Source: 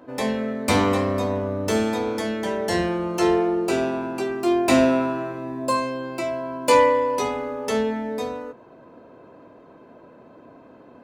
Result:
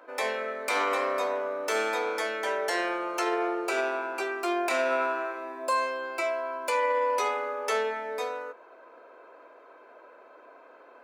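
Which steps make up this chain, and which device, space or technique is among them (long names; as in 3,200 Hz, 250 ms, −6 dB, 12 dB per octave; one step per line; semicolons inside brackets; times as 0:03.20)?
laptop speaker (high-pass filter 420 Hz 24 dB per octave; parametric band 1,400 Hz +8.5 dB 0.58 octaves; parametric band 2,300 Hz +8 dB 0.2 octaves; brickwall limiter −15 dBFS, peak gain reduction 12 dB)
level −3 dB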